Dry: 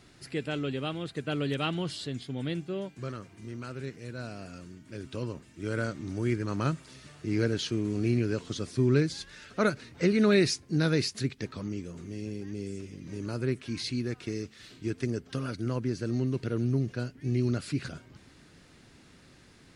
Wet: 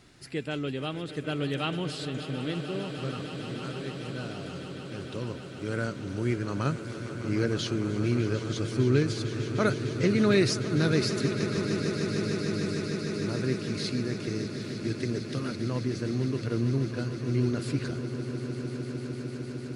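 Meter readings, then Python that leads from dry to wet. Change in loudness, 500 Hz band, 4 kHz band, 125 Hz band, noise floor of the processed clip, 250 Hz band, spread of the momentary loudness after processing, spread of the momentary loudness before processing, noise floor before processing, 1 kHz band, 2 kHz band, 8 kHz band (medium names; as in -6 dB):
+1.5 dB, +2.0 dB, +2.0 dB, +2.0 dB, -39 dBFS, +1.5 dB, 11 LU, 13 LU, -57 dBFS, +2.0 dB, +2.0 dB, +2.0 dB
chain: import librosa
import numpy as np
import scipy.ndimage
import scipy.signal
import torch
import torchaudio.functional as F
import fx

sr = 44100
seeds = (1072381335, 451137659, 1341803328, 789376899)

y = fx.echo_swell(x, sr, ms=151, loudest=8, wet_db=-14.5)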